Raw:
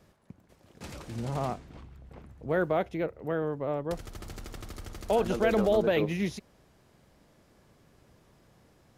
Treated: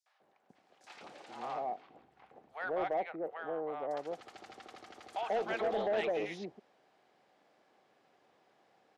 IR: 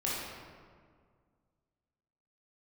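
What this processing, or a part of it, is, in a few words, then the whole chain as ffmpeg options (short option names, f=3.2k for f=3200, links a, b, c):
intercom: -filter_complex "[0:a]asettb=1/sr,asplit=3[a][b][c];[a]atrim=end=0.924[d];[b]atrim=start=0.92:end=1.69,asetpts=PTS-STARTPTS,afade=t=in:d=0.004:c=qsin,afade=t=out:st=0.766:d=0.004:c=qsin,highpass=f=230:p=1[e];[c]atrim=start=1.686[f];[d][e]acrossfade=d=0.004:c1=hsin:c2=qsin[g];[g][f]acrossfade=d=0.004:c1=qsin:c2=hsin,highpass=420,lowpass=5k,equalizer=f=770:t=o:w=0.27:g=11,acrossover=split=840|5800[h][i][j];[i]adelay=60[k];[h]adelay=200[l];[l][k][j]amix=inputs=3:normalize=0,asoftclip=type=tanh:threshold=-22.5dB,volume=-3.5dB"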